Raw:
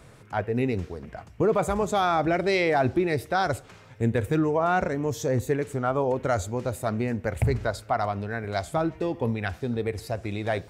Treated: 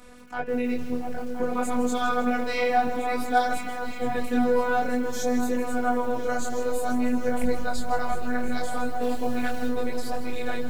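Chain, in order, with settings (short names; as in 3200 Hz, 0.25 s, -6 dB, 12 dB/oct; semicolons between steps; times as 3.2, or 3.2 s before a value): in parallel at +3 dB: limiter -25.5 dBFS, peak gain reduction 11.5 dB; 9.01–9.68 on the sum: added noise pink -41 dBFS; robotiser 247 Hz; on a send: repeats that get brighter 0.34 s, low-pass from 200 Hz, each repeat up 2 oct, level -3 dB; on the sum: chorus voices 2, 0.54 Hz, delay 23 ms, depth 3.5 ms; lo-fi delay 0.159 s, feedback 55%, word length 7-bit, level -12.5 dB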